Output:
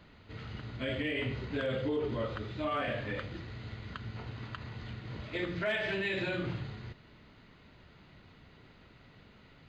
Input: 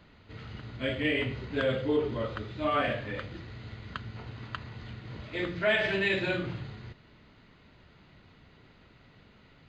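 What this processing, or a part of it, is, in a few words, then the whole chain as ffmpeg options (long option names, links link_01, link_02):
clipper into limiter: -af "asoftclip=type=hard:threshold=-18dB,alimiter=level_in=1dB:limit=-24dB:level=0:latency=1:release=75,volume=-1dB"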